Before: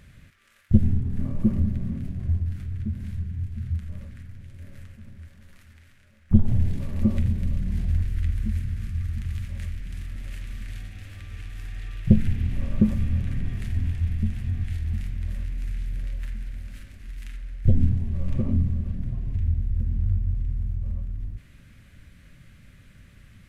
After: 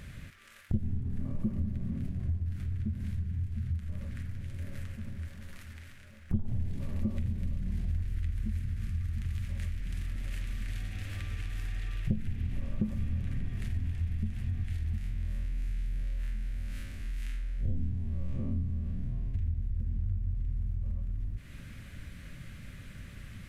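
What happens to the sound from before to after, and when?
14.98–19.34 s: spectral blur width 81 ms
whole clip: compression 3:1, threshold -38 dBFS; trim +5 dB

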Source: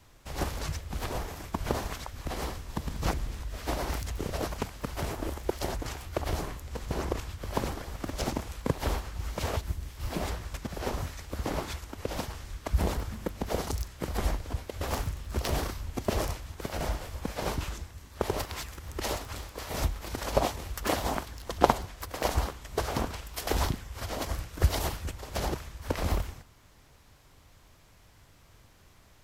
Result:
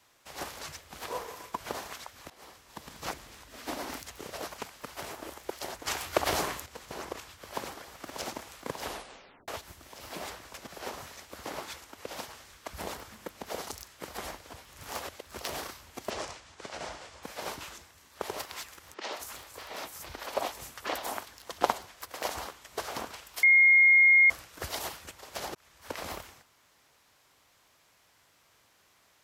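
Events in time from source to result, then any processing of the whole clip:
1.07–1.56 s: small resonant body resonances 480/1000 Hz, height 13 dB -> 11 dB
2.30–2.92 s: fade in, from -21.5 dB
3.47–4.02 s: peaking EQ 260 Hz +11 dB 0.62 oct
5.87–6.66 s: gain +11 dB
7.48–8.28 s: echo throw 590 ms, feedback 75%, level -8.5 dB
8.85 s: tape stop 0.63 s
14.65–15.25 s: reverse
16.10–17.23 s: low-pass 8.1 kHz 24 dB/octave
18.94–21.21 s: three bands offset in time mids, highs, lows 180/250 ms, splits 170/5900 Hz
23.43–24.30 s: bleep 2.14 kHz -14 dBFS
25.55–25.99 s: fade in equal-power
whole clip: high-pass 720 Hz 6 dB/octave; trim -1.5 dB

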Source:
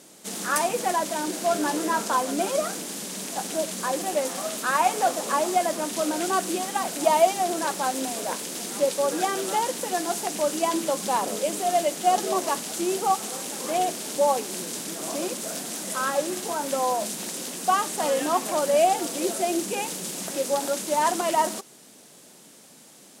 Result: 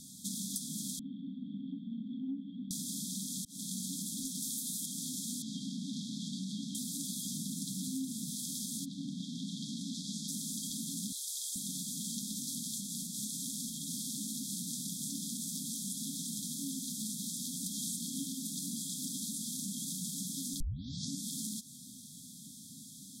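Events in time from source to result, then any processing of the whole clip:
0.99–2.71 s: cascade formant filter i
3.45–3.86 s: fade in
4.42–4.86 s: treble shelf 6.7 kHz +10 dB
5.42–6.75 s: low-pass 3.7 kHz
7.25–8.31 s: bass shelf 270 Hz +9 dB
8.84–10.27 s: low-pass 2.2 kHz -> 5.4 kHz
11.12–11.56 s: steep high-pass 540 Hz 48 dB/octave
12.71–14.09 s: compression 2.5:1, threshold -27 dBFS
17.66–18.37 s: level flattener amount 50%
20.60 s: tape start 0.65 s
whole clip: FFT band-reject 280–3200 Hz; bass shelf 160 Hz +12 dB; compression 6:1, threshold -36 dBFS

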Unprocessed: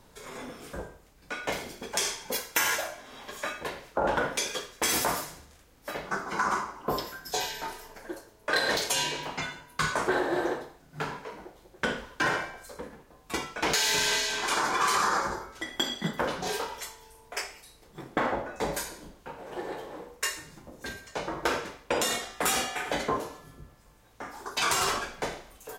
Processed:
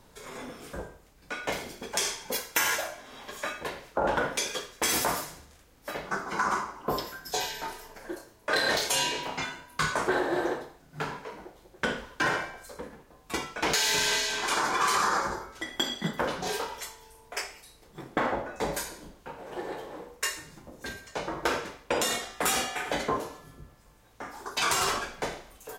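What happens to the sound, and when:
7.98–9.83 s: doubling 30 ms -6 dB

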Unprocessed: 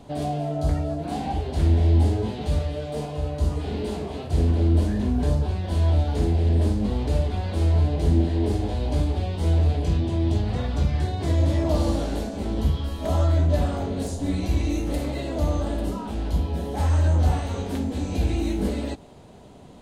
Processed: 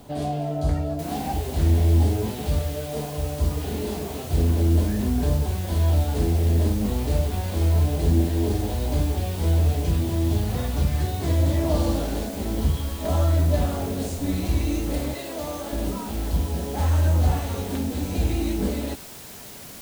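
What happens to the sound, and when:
0.99 s: noise floor step -59 dB -42 dB
15.14–15.73 s: high-pass 490 Hz 6 dB/octave

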